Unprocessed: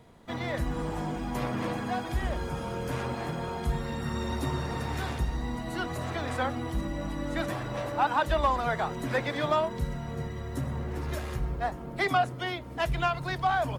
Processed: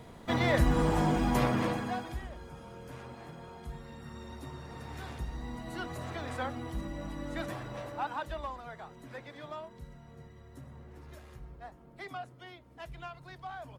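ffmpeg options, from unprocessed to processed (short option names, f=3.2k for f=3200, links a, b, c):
-af "volume=13dB,afade=t=out:st=1.27:d=0.55:silence=0.421697,afade=t=out:st=1.82:d=0.46:silence=0.266073,afade=t=in:st=4.59:d=1.16:silence=0.421697,afade=t=out:st=7.51:d=1.12:silence=0.298538"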